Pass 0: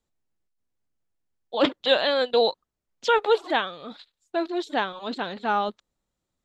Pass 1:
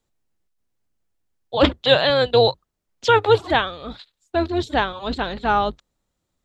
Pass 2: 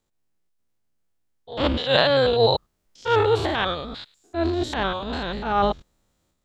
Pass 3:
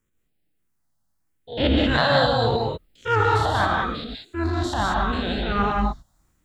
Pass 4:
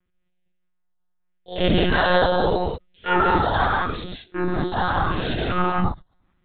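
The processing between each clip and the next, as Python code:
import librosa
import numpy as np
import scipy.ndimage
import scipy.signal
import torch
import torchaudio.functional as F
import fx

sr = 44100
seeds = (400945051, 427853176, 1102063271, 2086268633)

y1 = fx.octave_divider(x, sr, octaves=2, level_db=-3.0)
y1 = y1 * 10.0 ** (5.0 / 20.0)
y2 = fx.spec_steps(y1, sr, hold_ms=100)
y2 = fx.transient(y2, sr, attack_db=-10, sustain_db=7)
y2 = y2 * 10.0 ** (1.0 / 20.0)
y3 = fx.phaser_stages(y2, sr, stages=4, low_hz=380.0, high_hz=1200.0, hz=0.8, feedback_pct=0)
y3 = fx.rev_gated(y3, sr, seeds[0], gate_ms=220, shape='rising', drr_db=-0.5)
y3 = y3 * 10.0 ** (3.0 / 20.0)
y4 = fx.lpc_monotone(y3, sr, seeds[1], pitch_hz=180.0, order=16)
y4 = y4 * 10.0 ** (1.0 / 20.0)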